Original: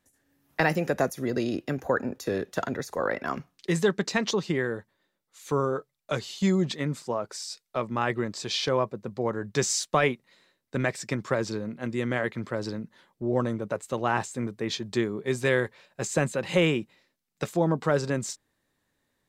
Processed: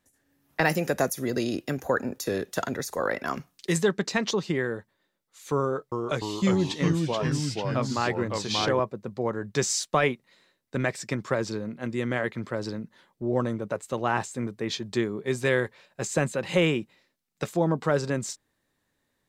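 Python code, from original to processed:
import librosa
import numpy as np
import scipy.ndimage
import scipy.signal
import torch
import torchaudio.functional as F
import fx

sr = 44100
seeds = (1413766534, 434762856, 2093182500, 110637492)

y = fx.high_shelf(x, sr, hz=5000.0, db=10.5, at=(0.65, 3.78))
y = fx.echo_pitch(y, sr, ms=297, semitones=-2, count=3, db_per_echo=-3.0, at=(5.62, 8.8))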